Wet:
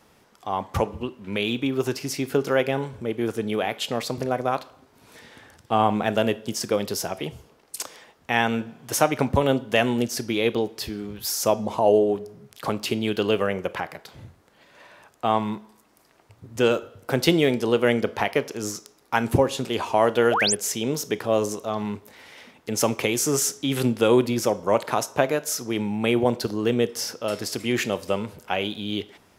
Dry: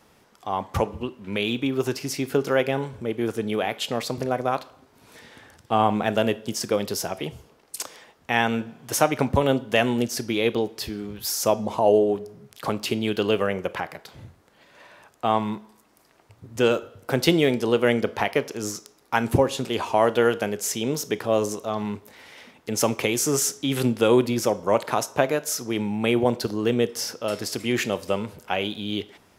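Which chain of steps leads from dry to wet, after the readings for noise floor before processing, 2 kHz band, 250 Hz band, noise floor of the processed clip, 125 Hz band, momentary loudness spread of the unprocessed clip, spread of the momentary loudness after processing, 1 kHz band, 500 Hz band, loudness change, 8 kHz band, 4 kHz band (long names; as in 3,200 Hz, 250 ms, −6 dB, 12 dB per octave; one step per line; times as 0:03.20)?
−59 dBFS, +0.5 dB, 0.0 dB, −59 dBFS, 0.0 dB, 10 LU, 10 LU, 0.0 dB, 0.0 dB, 0.0 dB, +0.5 dB, +0.5 dB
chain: sound drawn into the spectrogram rise, 0:20.31–0:20.55, 510–11,000 Hz −22 dBFS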